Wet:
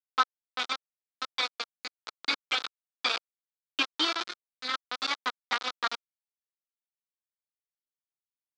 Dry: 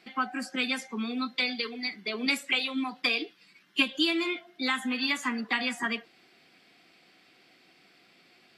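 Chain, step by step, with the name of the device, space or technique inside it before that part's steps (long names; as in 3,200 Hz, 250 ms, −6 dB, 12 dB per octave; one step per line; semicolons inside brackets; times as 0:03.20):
hand-held game console (bit reduction 4 bits; loudspeaker in its box 450–4,800 Hz, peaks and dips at 590 Hz −3 dB, 1,300 Hz +8 dB, 1,900 Hz −4 dB, 2,700 Hz −6 dB, 3,800 Hz +4 dB)
0:04.23–0:04.74: drawn EQ curve 230 Hz 0 dB, 850 Hz −10 dB, 1,500 Hz −3 dB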